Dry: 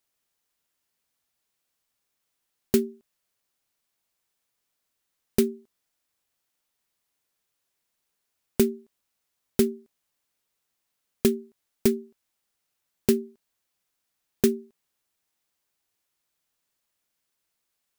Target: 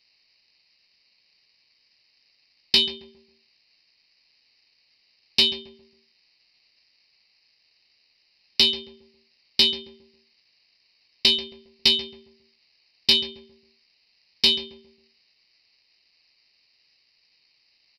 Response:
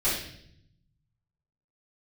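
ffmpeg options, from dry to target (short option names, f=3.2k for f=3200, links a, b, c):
-filter_complex "[0:a]acrusher=samples=13:mix=1:aa=0.000001,aresample=11025,asoftclip=type=tanh:threshold=-23.5dB,aresample=44100,asplit=2[a][b];[b]adelay=16,volume=-12.5dB[c];[a][c]amix=inputs=2:normalize=0,asplit=2[d][e];[e]adelay=136,lowpass=f=1k:p=1,volume=-9dB,asplit=2[f][g];[g]adelay=136,lowpass=f=1k:p=1,volume=0.4,asplit=2[h][i];[i]adelay=136,lowpass=f=1k:p=1,volume=0.4,asplit=2[j][k];[k]adelay=136,lowpass=f=1k:p=1,volume=0.4[l];[d][f][h][j][l]amix=inputs=5:normalize=0,aexciter=amount=14.6:drive=9.7:freq=2.4k,volume=-3.5dB"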